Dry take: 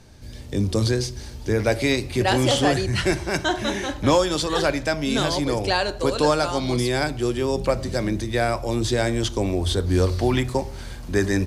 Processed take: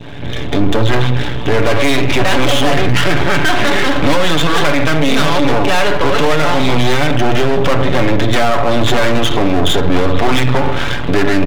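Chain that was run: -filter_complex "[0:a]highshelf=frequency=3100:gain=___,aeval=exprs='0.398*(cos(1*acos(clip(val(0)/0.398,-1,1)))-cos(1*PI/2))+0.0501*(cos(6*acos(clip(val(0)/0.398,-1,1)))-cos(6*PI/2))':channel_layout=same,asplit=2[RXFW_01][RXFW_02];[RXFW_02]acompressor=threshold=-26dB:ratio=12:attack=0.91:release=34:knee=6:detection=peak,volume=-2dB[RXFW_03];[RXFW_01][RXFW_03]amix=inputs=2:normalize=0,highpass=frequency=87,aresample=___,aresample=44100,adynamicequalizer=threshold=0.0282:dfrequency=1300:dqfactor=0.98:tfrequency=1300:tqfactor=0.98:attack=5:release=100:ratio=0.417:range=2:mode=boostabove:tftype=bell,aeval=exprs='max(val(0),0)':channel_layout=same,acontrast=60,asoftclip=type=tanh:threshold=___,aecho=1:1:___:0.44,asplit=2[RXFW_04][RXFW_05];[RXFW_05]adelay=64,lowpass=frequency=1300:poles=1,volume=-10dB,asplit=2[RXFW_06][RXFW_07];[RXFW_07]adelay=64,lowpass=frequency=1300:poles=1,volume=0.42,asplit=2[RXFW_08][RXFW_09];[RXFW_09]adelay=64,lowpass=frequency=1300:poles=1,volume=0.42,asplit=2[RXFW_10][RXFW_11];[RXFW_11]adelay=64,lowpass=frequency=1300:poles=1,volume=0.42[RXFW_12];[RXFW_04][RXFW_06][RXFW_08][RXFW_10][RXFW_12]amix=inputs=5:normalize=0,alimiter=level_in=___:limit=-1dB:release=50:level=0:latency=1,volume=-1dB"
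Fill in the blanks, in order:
5.5, 8000, -10dB, 7, 13.5dB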